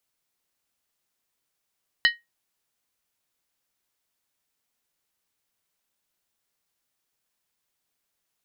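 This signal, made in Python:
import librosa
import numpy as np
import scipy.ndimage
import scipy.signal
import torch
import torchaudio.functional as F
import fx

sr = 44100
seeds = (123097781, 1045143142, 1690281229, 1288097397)

y = fx.strike_skin(sr, length_s=0.63, level_db=-12.5, hz=1880.0, decay_s=0.19, tilt_db=4.5, modes=5)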